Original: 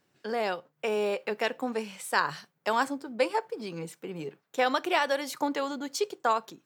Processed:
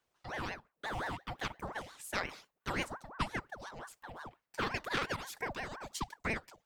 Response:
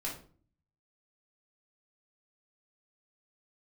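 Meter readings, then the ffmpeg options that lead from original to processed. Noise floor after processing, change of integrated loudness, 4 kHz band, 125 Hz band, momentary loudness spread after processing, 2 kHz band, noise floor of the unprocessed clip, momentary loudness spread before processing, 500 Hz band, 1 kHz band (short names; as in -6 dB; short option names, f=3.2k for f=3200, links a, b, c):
-84 dBFS, -9.5 dB, -7.5 dB, +2.5 dB, 12 LU, -6.0 dB, -75 dBFS, 11 LU, -15.0 dB, -10.5 dB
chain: -af "aeval=exprs='0.282*(cos(1*acos(clip(val(0)/0.282,-1,1)))-cos(1*PI/2))+0.02*(cos(3*acos(clip(val(0)/0.282,-1,1)))-cos(3*PI/2))':c=same,bass=f=250:g=1,treble=f=4k:g=3,aeval=exprs='val(0)*sin(2*PI*820*n/s+820*0.65/5.7*sin(2*PI*5.7*n/s))':c=same,volume=-5.5dB"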